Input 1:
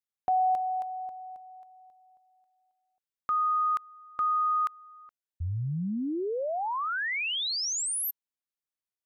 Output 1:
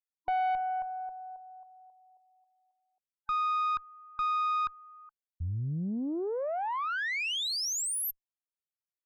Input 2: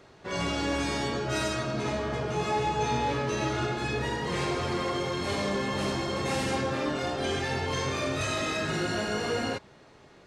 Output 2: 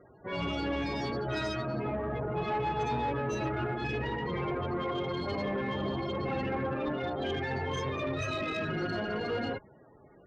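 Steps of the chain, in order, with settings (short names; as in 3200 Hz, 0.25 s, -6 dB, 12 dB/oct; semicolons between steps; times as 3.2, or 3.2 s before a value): loudest bins only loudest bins 32; tube stage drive 25 dB, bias 0.35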